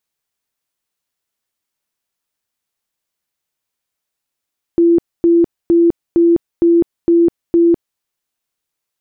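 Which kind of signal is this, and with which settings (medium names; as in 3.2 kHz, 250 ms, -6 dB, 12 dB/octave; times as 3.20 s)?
tone bursts 339 Hz, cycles 69, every 0.46 s, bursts 7, -7 dBFS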